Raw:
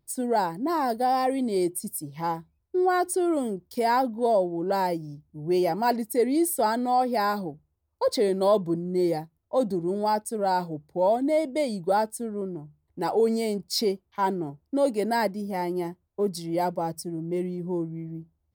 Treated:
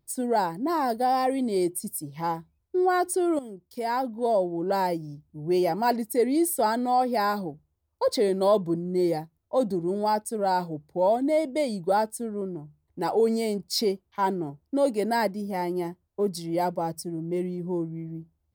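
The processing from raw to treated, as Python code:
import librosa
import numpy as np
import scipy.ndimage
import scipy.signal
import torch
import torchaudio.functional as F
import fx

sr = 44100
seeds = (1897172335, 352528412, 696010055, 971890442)

y = fx.edit(x, sr, fx.fade_in_from(start_s=3.39, length_s=1.16, floor_db=-12.5), tone=tone)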